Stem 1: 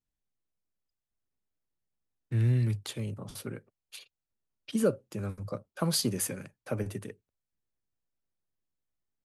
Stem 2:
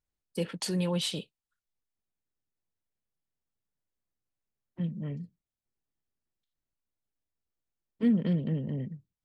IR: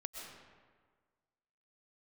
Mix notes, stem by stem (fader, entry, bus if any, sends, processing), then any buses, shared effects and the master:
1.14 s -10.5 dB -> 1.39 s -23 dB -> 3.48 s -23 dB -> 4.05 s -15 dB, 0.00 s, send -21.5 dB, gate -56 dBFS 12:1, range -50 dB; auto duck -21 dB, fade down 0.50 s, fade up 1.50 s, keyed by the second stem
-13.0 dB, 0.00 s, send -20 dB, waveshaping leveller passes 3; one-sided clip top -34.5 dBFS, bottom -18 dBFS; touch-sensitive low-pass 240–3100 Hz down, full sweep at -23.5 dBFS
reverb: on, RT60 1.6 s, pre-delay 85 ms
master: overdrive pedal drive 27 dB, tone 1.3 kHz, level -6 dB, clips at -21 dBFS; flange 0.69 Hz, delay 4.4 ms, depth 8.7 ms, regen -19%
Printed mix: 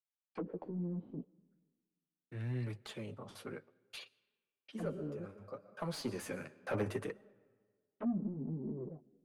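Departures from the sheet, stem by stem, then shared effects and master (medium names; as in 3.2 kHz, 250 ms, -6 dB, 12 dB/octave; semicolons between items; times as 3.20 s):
stem 1 -10.5 dB -> -2.5 dB; stem 2 -13.0 dB -> -24.5 dB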